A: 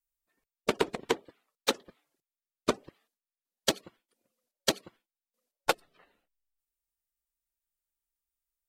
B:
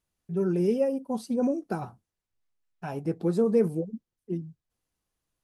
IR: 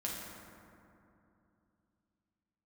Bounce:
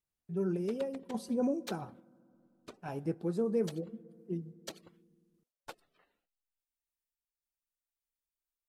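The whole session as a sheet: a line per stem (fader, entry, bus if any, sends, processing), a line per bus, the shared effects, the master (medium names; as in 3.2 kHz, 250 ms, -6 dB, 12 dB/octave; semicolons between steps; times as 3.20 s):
-5.5 dB, 0.00 s, no send, compression, threshold -27 dBFS, peak gain reduction 7.5 dB; peak limiter -21.5 dBFS, peak gain reduction 9.5 dB
-5.0 dB, 0.00 s, send -20.5 dB, none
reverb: on, RT60 2.8 s, pre-delay 5 ms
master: random-step tremolo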